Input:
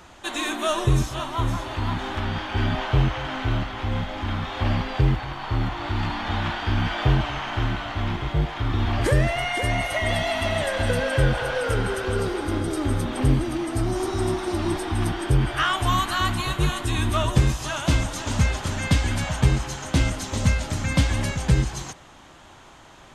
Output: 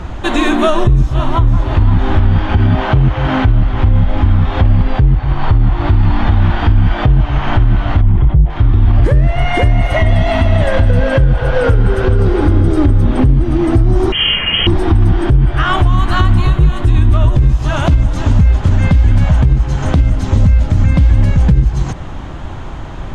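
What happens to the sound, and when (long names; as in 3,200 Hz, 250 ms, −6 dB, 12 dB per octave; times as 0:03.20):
0:02.57–0:03.45: high-pass filter 110 Hz 6 dB per octave
0:08.01–0:08.50: spectral envelope exaggerated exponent 1.5
0:14.12–0:14.67: voice inversion scrambler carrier 3,200 Hz
whole clip: RIAA equalisation playback; downward compressor 3 to 1, threshold −23 dBFS; boost into a limiter +16 dB; level −1 dB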